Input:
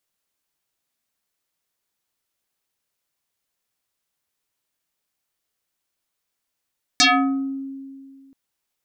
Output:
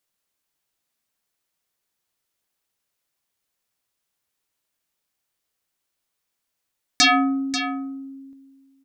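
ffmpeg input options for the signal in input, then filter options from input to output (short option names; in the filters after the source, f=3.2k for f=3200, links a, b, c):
-f lavfi -i "aevalsrc='0.299*pow(10,-3*t/2.12)*sin(2*PI*271*t+7*pow(10,-3*t/0.63)*sin(2*PI*3.68*271*t))':d=1.33:s=44100"
-af "aecho=1:1:538:0.299"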